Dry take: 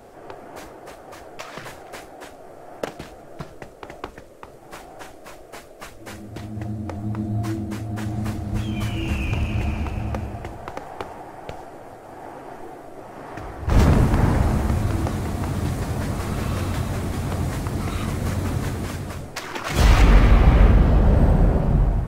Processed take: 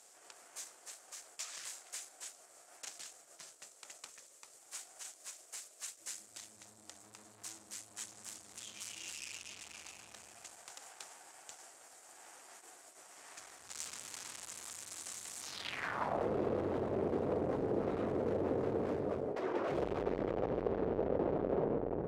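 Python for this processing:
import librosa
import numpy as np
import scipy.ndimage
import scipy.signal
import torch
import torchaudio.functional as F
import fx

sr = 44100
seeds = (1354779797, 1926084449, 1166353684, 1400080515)

y = fx.tube_stage(x, sr, drive_db=33.0, bias=0.7)
y = fx.filter_sweep_bandpass(y, sr, from_hz=7500.0, to_hz=450.0, start_s=15.39, end_s=16.28, q=2.5)
y = y * 10.0 ** (10.5 / 20.0)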